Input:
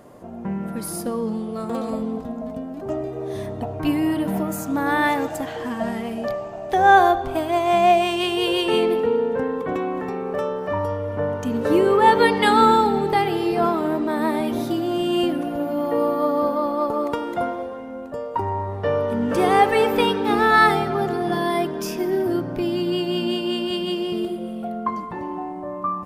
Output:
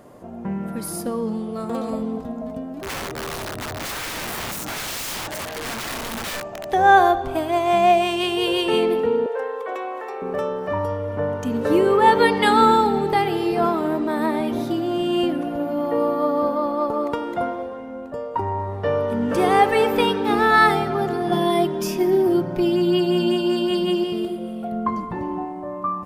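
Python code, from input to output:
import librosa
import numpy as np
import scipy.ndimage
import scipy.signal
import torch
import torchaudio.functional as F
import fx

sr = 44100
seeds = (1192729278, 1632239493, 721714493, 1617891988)

y = fx.overflow_wrap(x, sr, gain_db=24.5, at=(2.74, 6.69))
y = fx.cheby2_highpass(y, sr, hz=220.0, order=4, stop_db=40, at=(9.26, 10.22))
y = fx.high_shelf(y, sr, hz=6100.0, db=-5.5, at=(14.26, 18.59))
y = fx.comb(y, sr, ms=5.5, depth=0.74, at=(21.31, 24.04))
y = fx.low_shelf(y, sr, hz=240.0, db=8.5, at=(24.72, 25.45))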